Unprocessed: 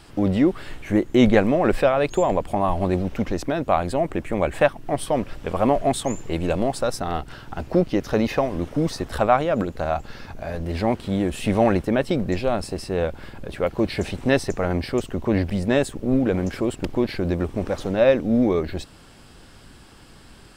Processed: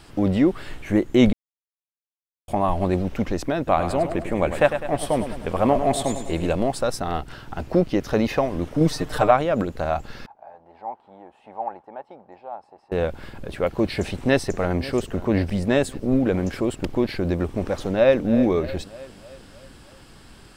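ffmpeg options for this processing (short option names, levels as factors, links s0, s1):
-filter_complex "[0:a]asettb=1/sr,asplit=3[s0][s1][s2];[s0]atrim=end=3.574[s3];[s1]atrim=start=3.57:end=6.5,asetpts=PTS-STARTPTS,afade=t=in:d=0.004:c=qsin,afade=t=out:st=2.926:d=0.004:c=qsin,aecho=1:1:102|204|306|408|510|612:0.335|0.174|0.0906|0.0471|0.0245|0.0127,atrim=end_sample=129213[s4];[s2]atrim=start=6.496[s5];[s3][s4]acrossfade=d=0.004:c1=hsin:c2=qsin[s6];[s6][s5]acrossfade=d=0.004:c1=qsin:c2=hsin,asettb=1/sr,asplit=3[s7][s8][s9];[s7]atrim=end=8.804[s10];[s8]atrim=start=8.8:end=9.31,asetpts=PTS-STARTPTS,afade=t=in:d=0.004:c=qsin,afade=t=out:st=0.506:d=0.004:c=qsin,aecho=1:1:6.6:0.87,atrim=end_sample=22491[s11];[s9]atrim=start=9.306[s12];[s10][s11]acrossfade=d=0.004:c1=hsin:c2=qsin[s13];[s13][s12]acrossfade=d=0.004:c1=qsin:c2=hsin,asettb=1/sr,asplit=3[s14][s15][s16];[s14]atrim=end=10.264[s17];[s15]atrim=start=10.26:end=12.92,asetpts=PTS-STARTPTS,afade=t=in:d=0.004:c=qsin,afade=t=out:st=2.656:d=0.004:c=qsin,bandpass=f=840:t=q:w=7.8[s18];[s16]atrim=start=12.916[s19];[s17][s18]acrossfade=d=0.004:c1=hsin:c2=qsin[s20];[s20][s19]acrossfade=d=0.004:c1=qsin:c2=hsin,asplit=2[s21][s22];[s22]afade=t=in:st=13.99:d=0.01,afade=t=out:st=14.92:d=0.01,aecho=0:1:540|1080|1620|2160:0.141254|0.0706269|0.0353134|0.0176567[s23];[s21][s23]amix=inputs=2:normalize=0,asplit=2[s24][s25];[s25]afade=t=in:st=17.81:d=0.01,afade=t=out:st=18.26:d=0.01,aecho=0:1:310|620|930|1240|1550|1860:0.223872|0.12313|0.0677213|0.0372467|0.0204857|0.0112671[s26];[s24][s26]amix=inputs=2:normalize=0,asplit=3[s27][s28][s29];[s27]atrim=end=1.33,asetpts=PTS-STARTPTS,afade=t=out:st=1.326:d=0.004:c=hsin[s30];[s28]atrim=start=1.33:end=2.48,asetpts=PTS-STARTPTS,volume=0[s31];[s29]atrim=start=2.48,asetpts=PTS-STARTPTS,afade=t=in:d=0.004:c=hsin[s32];[s30][s31][s32]concat=n=3:v=0:a=1"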